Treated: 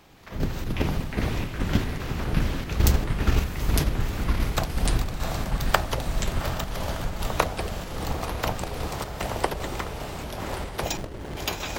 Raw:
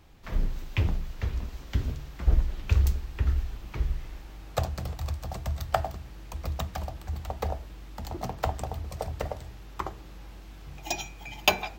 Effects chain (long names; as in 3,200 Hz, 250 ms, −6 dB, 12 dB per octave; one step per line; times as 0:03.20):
ceiling on every frequency bin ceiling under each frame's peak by 15 dB
on a send: feedback delay with all-pass diffusion 700 ms, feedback 54%, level −5 dB
on the sum: square-wave tremolo 2.5 Hz, depth 60%, duty 60%
in parallel at +0.5 dB: output level in coarse steps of 23 dB
on the sum: delay with pitch and tempo change per echo 161 ms, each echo −4 semitones, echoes 3
0:10.97–0:11.37: windowed peak hold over 33 samples
level −1 dB